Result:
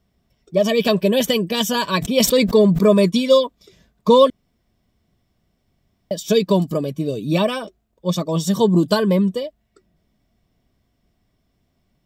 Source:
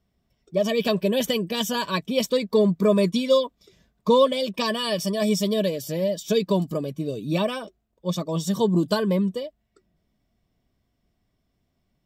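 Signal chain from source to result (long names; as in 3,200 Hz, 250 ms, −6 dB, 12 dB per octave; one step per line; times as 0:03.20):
0:01.98–0:02.89: level that may fall only so fast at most 44 dB per second
0:04.30–0:06.11: fill with room tone
level +5.5 dB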